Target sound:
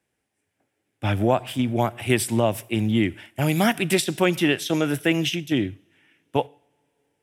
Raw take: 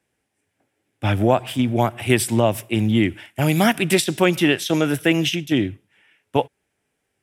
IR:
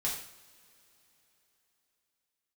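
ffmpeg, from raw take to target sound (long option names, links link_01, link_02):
-filter_complex "[0:a]asplit=2[link_01][link_02];[1:a]atrim=start_sample=2205,highshelf=frequency=9900:gain=8.5[link_03];[link_02][link_03]afir=irnorm=-1:irlink=0,volume=-26.5dB[link_04];[link_01][link_04]amix=inputs=2:normalize=0,volume=-3.5dB"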